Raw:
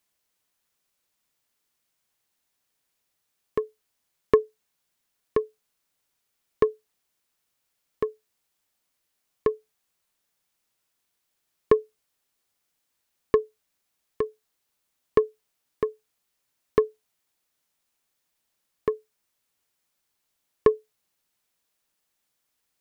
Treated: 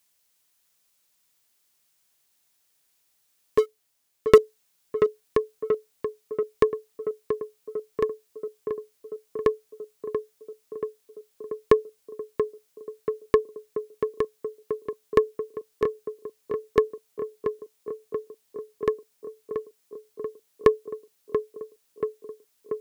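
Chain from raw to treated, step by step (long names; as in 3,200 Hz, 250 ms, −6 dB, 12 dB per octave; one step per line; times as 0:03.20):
0:03.58–0:04.38: leveller curve on the samples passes 2
high-shelf EQ 2,800 Hz +8.5 dB
tape delay 683 ms, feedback 83%, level −6 dB, low-pass 1,400 Hz
level +1 dB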